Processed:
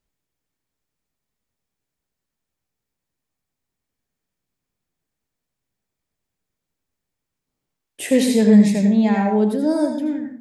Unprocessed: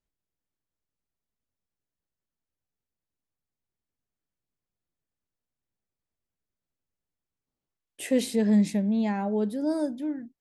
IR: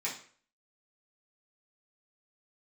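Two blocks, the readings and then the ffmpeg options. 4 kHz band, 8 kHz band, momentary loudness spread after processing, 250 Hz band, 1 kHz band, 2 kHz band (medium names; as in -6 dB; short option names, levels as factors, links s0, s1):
+8.5 dB, +8.5 dB, 11 LU, +9.5 dB, +10.0 dB, +10.0 dB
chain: -filter_complex "[0:a]asplit=2[s0][s1];[1:a]atrim=start_sample=2205,adelay=77[s2];[s1][s2]afir=irnorm=-1:irlink=0,volume=0.447[s3];[s0][s3]amix=inputs=2:normalize=0,volume=2.37"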